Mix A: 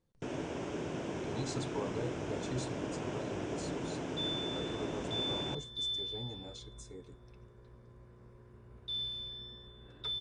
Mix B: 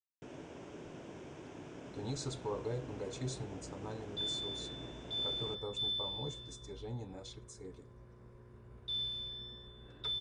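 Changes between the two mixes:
speech: entry +0.70 s; first sound -10.5 dB

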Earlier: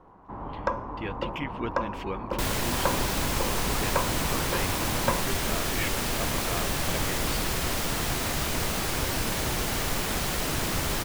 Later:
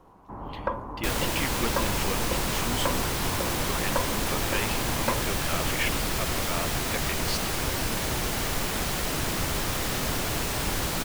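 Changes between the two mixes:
speech: remove LPF 1600 Hz 6 dB/oct; first sound: add air absorption 320 m; second sound: entry -1.35 s

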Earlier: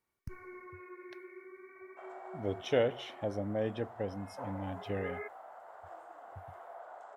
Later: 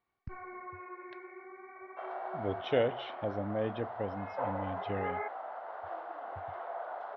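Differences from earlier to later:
first sound: remove fixed phaser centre 330 Hz, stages 4; second sound +8.5 dB; master: add steep low-pass 4300 Hz 36 dB/oct

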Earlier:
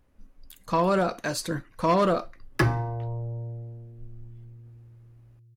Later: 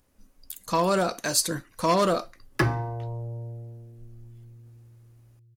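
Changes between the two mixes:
speech: add tone controls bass -1 dB, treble +12 dB; master: add low shelf 78 Hz -5.5 dB

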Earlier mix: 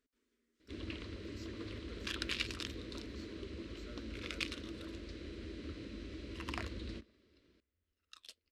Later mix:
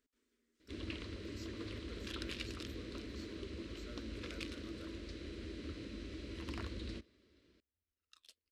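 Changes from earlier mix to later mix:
second sound -9.0 dB; master: add high shelf 6700 Hz +5 dB

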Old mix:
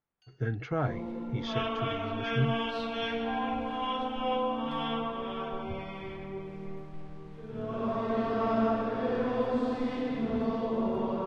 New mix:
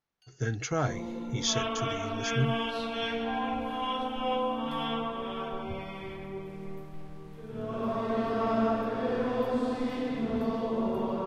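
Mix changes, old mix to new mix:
speech: remove air absorption 340 m; master: remove air absorption 74 m

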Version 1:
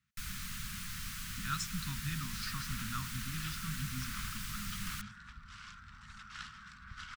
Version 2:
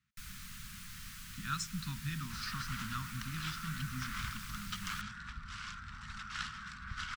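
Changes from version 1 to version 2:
first sound -6.0 dB; second sound +6.0 dB

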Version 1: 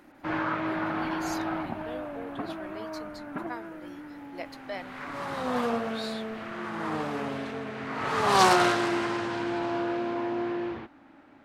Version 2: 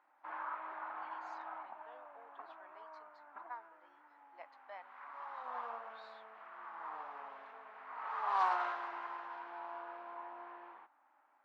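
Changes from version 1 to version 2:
background -3.0 dB; master: add ladder band-pass 1100 Hz, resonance 50%

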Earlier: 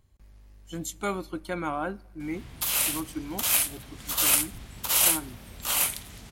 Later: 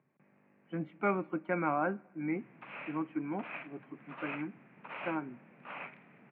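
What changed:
background -9.0 dB; master: add Chebyshev band-pass 140–2500 Hz, order 5

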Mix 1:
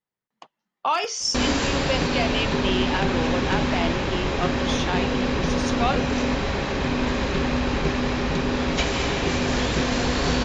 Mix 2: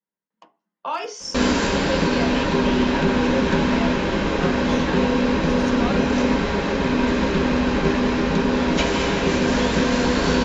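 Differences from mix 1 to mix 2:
speech -8.5 dB; reverb: on, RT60 0.35 s

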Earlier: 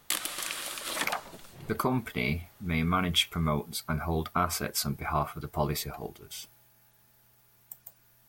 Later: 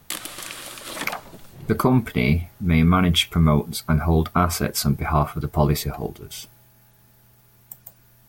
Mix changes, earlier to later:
speech +5.5 dB; master: add low shelf 440 Hz +8 dB

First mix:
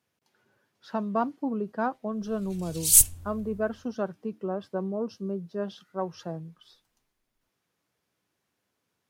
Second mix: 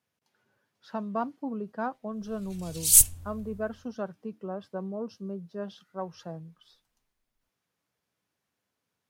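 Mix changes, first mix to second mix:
speech -3.5 dB; master: add bell 350 Hz -4 dB 0.42 oct

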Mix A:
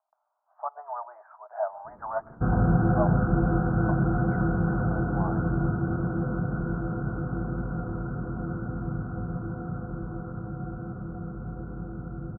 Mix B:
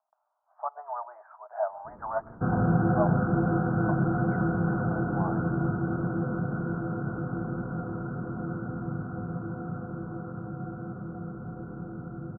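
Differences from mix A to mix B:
first sound +3.0 dB; second sound: add HPF 120 Hz 12 dB/oct

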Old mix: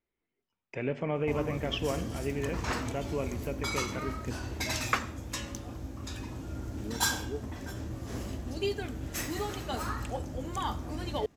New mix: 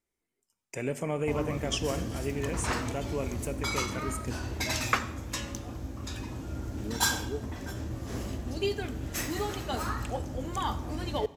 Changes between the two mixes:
speech: remove LPF 3700 Hz 24 dB/oct; background: send on

